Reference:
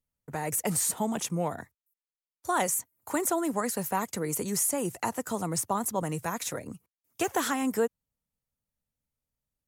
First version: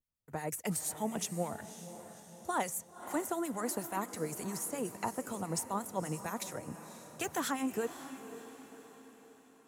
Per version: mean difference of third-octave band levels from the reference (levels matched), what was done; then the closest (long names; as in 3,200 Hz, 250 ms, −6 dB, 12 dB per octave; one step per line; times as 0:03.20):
5.0 dB: de-essing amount 45%
two-band tremolo in antiphase 8.5 Hz, depth 70%, crossover 1,400 Hz
on a send: feedback delay with all-pass diffusion 544 ms, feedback 50%, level −12 dB
on the sum: level −3 dB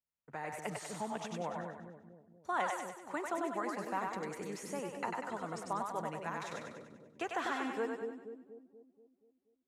9.0 dB: low-pass filter 2,100 Hz 12 dB per octave
spectral tilt +3 dB per octave
echo with a time of its own for lows and highs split 490 Hz, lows 240 ms, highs 97 ms, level −3 dB
level −7 dB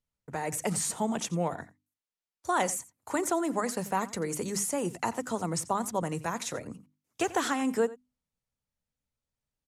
3.0 dB: low-pass filter 8,000 Hz 12 dB per octave
mains-hum notches 50/100/150/200/250/300 Hz
slap from a distant wall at 15 metres, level −18 dB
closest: third